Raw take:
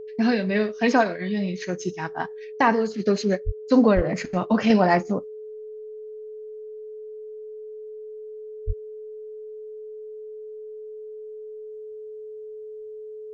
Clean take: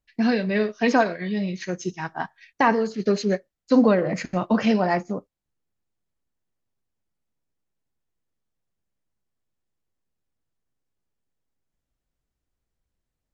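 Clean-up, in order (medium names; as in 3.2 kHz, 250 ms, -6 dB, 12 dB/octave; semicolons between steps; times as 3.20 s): band-stop 430 Hz, Q 30; 3.45–3.57 s: high-pass 140 Hz 24 dB/octave; 3.95–4.07 s: high-pass 140 Hz 24 dB/octave; 4.70 s: gain correction -3.5 dB; 8.66–8.78 s: high-pass 140 Hz 24 dB/octave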